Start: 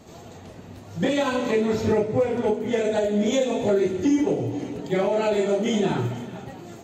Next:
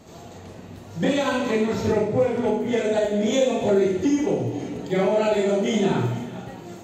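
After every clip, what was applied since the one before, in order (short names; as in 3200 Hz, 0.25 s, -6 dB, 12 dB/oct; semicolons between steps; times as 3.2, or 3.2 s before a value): Schroeder reverb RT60 0.39 s, combs from 33 ms, DRR 4.5 dB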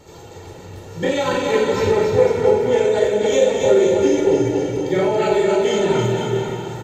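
comb 2.2 ms, depth 64%; on a send: bouncing-ball echo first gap 0.28 s, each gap 0.8×, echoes 5; on the sum: gain +1.5 dB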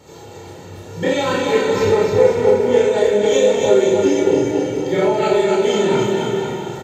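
HPF 84 Hz; doubler 29 ms -2.5 dB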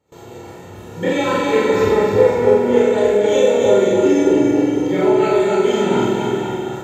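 gate with hold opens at -29 dBFS; bell 5100 Hz -7 dB 1 oct; on a send: flutter echo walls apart 7.8 m, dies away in 0.72 s; on the sum: gain -1 dB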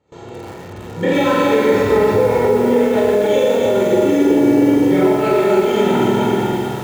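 limiter -10 dBFS, peak gain reduction 8 dB; air absorption 81 m; lo-fi delay 0.119 s, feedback 35%, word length 6-bit, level -5.5 dB; gain +3.5 dB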